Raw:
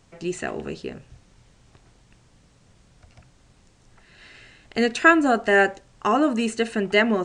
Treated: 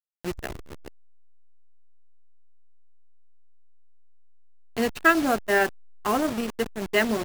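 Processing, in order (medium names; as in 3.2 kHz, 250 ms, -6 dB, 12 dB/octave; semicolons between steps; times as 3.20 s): send-on-delta sampling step -23 dBFS; transformer saturation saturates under 610 Hz; trim -2.5 dB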